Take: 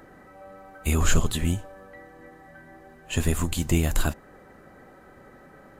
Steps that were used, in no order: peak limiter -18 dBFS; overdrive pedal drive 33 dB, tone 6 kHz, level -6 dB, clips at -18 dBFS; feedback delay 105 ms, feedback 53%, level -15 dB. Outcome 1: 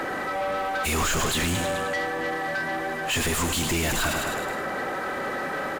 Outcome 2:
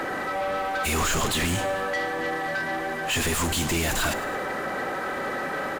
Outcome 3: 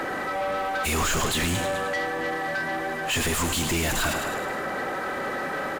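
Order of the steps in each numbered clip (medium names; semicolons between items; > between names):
feedback delay > peak limiter > overdrive pedal; peak limiter > overdrive pedal > feedback delay; peak limiter > feedback delay > overdrive pedal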